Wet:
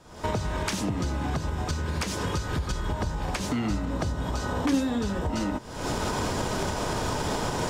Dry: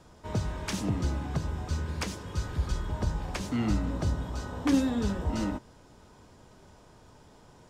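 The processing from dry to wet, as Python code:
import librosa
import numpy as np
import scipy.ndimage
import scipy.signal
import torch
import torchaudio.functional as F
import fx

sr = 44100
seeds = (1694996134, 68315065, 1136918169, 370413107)

y = fx.recorder_agc(x, sr, target_db=-20.0, rise_db_per_s=69.0, max_gain_db=30)
y = fx.low_shelf(y, sr, hz=290.0, db=-4.5)
y = y * 10.0 ** (2.0 / 20.0)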